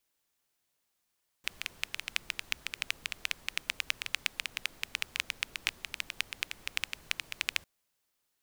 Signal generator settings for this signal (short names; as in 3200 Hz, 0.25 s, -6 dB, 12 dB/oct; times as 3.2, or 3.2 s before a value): rain from filtered ticks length 6.20 s, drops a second 9.6, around 2500 Hz, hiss -17.5 dB